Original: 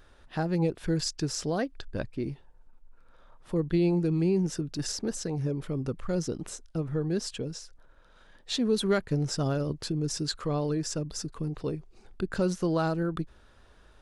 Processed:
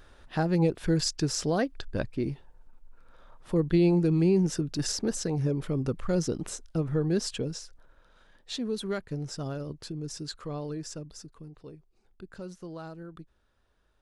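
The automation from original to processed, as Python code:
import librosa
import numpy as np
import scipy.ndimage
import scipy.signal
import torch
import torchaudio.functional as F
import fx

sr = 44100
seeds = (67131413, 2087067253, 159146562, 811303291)

y = fx.gain(x, sr, db=fx.line((7.45, 2.5), (8.8, -6.5), (10.89, -6.5), (11.54, -14.0)))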